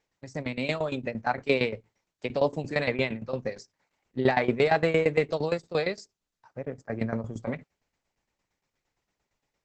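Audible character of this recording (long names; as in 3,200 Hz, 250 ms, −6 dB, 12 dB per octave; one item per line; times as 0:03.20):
tremolo saw down 8.7 Hz, depth 85%
Opus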